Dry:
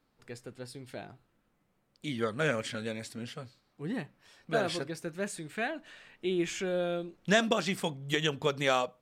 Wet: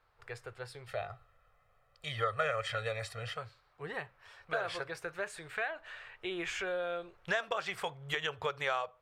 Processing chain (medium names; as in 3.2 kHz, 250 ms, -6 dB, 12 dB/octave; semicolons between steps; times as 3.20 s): FFT filter 100 Hz 0 dB, 250 Hz -27 dB, 420 Hz -5 dB, 900 Hz +1 dB, 1.3 kHz +4 dB, 6.6 kHz -10 dB; compression 2.5:1, threshold -39 dBFS, peak gain reduction 12.5 dB; 0.87–3.37 s: comb 1.6 ms, depth 79%; trim +4.5 dB